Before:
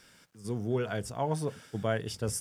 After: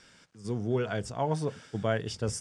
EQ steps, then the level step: LPF 8100 Hz 24 dB/oct; +1.5 dB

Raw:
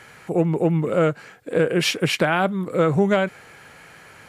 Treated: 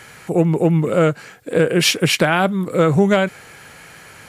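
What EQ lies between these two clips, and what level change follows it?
low shelf 250 Hz +3.5 dB; high shelf 3600 Hz +7.5 dB; +2.5 dB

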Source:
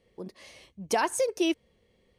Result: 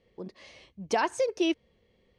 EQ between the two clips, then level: air absorption 150 m; high shelf 4800 Hz +8 dB; 0.0 dB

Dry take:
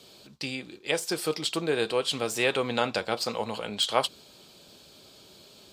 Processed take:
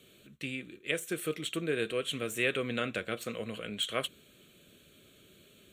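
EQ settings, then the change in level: fixed phaser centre 2100 Hz, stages 4; -2.0 dB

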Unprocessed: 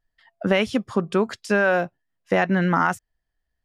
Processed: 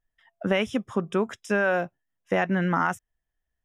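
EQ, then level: Butterworth band-stop 4400 Hz, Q 3.2; -4.0 dB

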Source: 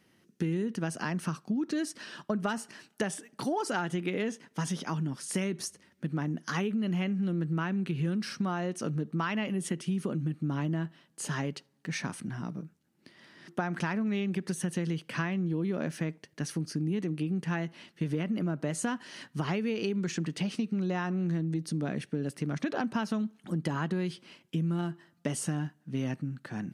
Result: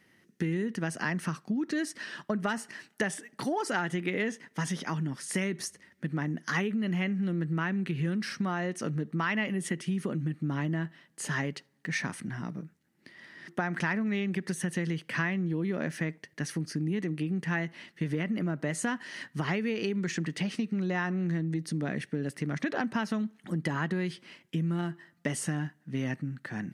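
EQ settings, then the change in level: bell 1900 Hz +9 dB 0.41 oct; 0.0 dB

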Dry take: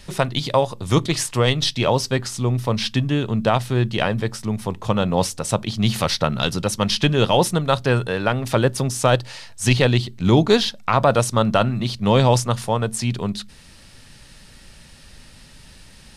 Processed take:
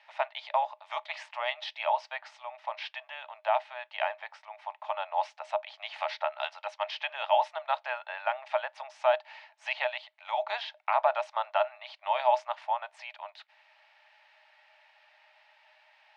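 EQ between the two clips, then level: rippled Chebyshev high-pass 600 Hz, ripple 9 dB; tape spacing loss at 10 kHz 42 dB; +3.0 dB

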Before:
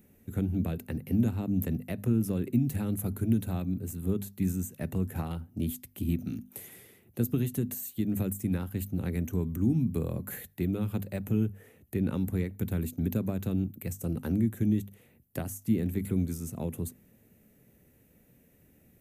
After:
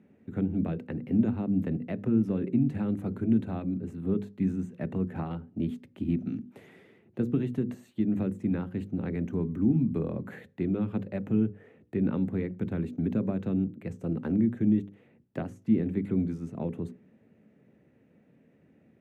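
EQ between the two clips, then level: BPF 180–2300 Hz; low shelf 340 Hz +6 dB; notches 60/120/180/240/300/360/420/480/540 Hz; +1.0 dB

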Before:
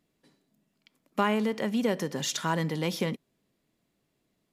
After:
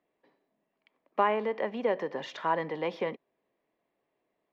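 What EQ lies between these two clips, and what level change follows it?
air absorption 260 m; three-band isolator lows -21 dB, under 400 Hz, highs -12 dB, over 2200 Hz; bell 1400 Hz -8.5 dB 0.27 oct; +5.0 dB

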